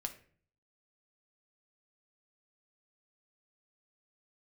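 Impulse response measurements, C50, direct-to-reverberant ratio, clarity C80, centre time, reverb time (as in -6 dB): 12.5 dB, 5.0 dB, 16.5 dB, 9 ms, 0.45 s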